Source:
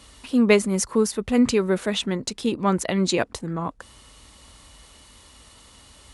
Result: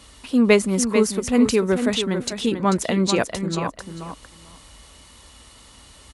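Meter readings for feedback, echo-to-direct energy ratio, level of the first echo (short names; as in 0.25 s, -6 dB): 15%, -8.0 dB, -8.0 dB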